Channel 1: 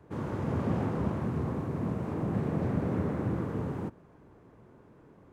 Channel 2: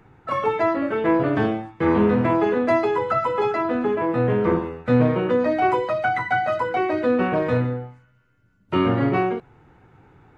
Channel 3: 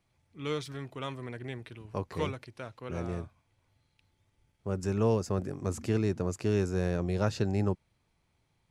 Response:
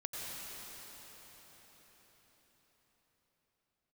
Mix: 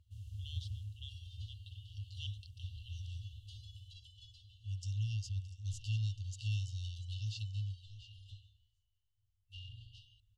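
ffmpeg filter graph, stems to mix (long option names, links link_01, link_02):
-filter_complex "[0:a]equalizer=frequency=4500:width_type=o:width=2.8:gain=-5,volume=-4dB,afade=type=out:start_time=0.68:duration=0.39:silence=0.446684,asplit=2[link_01][link_02];[link_02]volume=-11.5dB[link_03];[1:a]equalizer=frequency=490:width_type=o:width=0.77:gain=-8,asoftclip=type=tanh:threshold=-18dB,adelay=800,volume=-13dB[link_04];[2:a]lowpass=4100,lowshelf=frequency=100:width_type=q:width=1.5:gain=-11,dynaudnorm=framelen=340:gausssize=11:maxgain=7dB,volume=-4dB,asplit=2[link_05][link_06];[link_06]volume=-17dB[link_07];[link_03][link_07]amix=inputs=2:normalize=0,aecho=0:1:693:1[link_08];[link_01][link_04][link_05][link_08]amix=inputs=4:normalize=0,afftfilt=real='re*(1-between(b*sr/4096,110,2700))':imag='im*(1-between(b*sr/4096,110,2700))':win_size=4096:overlap=0.75"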